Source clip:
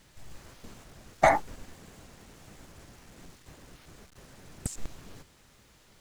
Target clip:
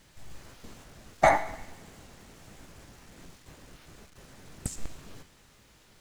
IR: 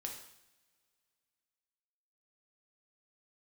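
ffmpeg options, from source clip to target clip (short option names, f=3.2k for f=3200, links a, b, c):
-filter_complex "[0:a]asplit=2[a][b];[b]equalizer=f=2.6k:w=0.39:g=9.5[c];[1:a]atrim=start_sample=2205,asetrate=34839,aresample=44100,adelay=19[d];[c][d]afir=irnorm=-1:irlink=0,volume=-14.5dB[e];[a][e]amix=inputs=2:normalize=0"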